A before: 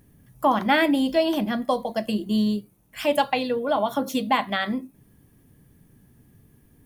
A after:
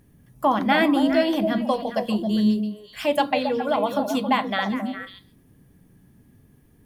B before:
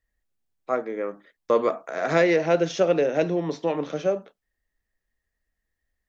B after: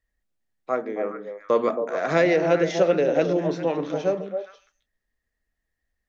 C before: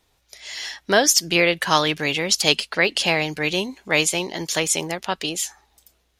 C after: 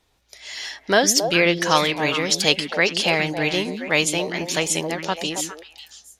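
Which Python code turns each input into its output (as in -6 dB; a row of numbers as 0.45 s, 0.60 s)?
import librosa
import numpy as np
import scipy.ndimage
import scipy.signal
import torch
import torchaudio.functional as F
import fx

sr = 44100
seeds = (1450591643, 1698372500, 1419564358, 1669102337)

p1 = fx.high_shelf(x, sr, hz=9600.0, db=-5.5)
y = p1 + fx.echo_stepped(p1, sr, ms=136, hz=230.0, octaves=1.4, feedback_pct=70, wet_db=-2.0, dry=0)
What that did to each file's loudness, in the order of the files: +1.0 LU, +1.0 LU, 0.0 LU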